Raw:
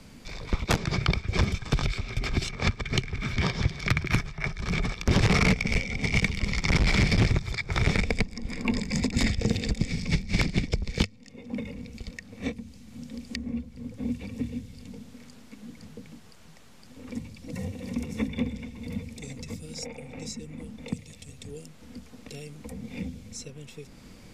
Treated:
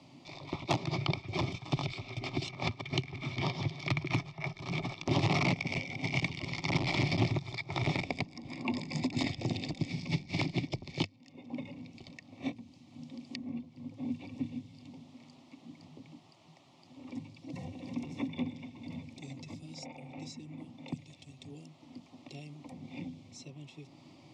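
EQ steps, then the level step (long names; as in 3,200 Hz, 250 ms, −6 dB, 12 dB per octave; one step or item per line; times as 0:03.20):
band-pass filter 150–3,600 Hz
phaser with its sweep stopped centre 310 Hz, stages 8
0.0 dB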